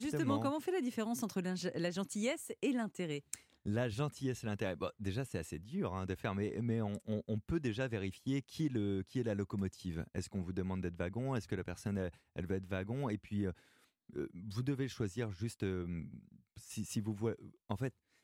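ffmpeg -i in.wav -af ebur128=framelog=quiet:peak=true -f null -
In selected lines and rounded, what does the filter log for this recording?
Integrated loudness:
  I:         -39.3 LUFS
  Threshold: -49.5 LUFS
Loudness range:
  LRA:         3.2 LU
  Threshold: -59.6 LUFS
  LRA low:   -41.5 LUFS
  LRA high:  -38.3 LUFS
True peak:
  Peak:      -21.2 dBFS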